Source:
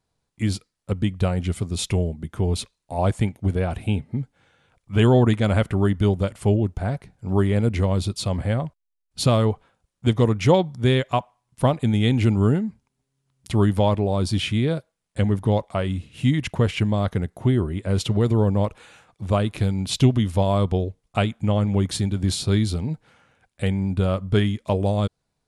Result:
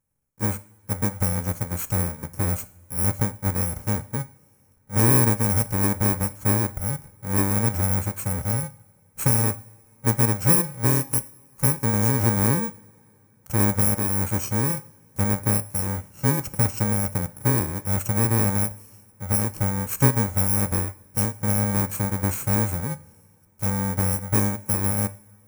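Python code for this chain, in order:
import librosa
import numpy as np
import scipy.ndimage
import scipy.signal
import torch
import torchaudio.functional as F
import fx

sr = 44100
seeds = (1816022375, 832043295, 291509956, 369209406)

y = fx.bit_reversed(x, sr, seeds[0], block=64)
y = fx.band_shelf(y, sr, hz=3700.0, db=-11.0, octaves=1.2)
y = fx.rev_double_slope(y, sr, seeds[1], early_s=0.49, late_s=3.2, knee_db=-21, drr_db=13.0)
y = F.gain(torch.from_numpy(y), -2.0).numpy()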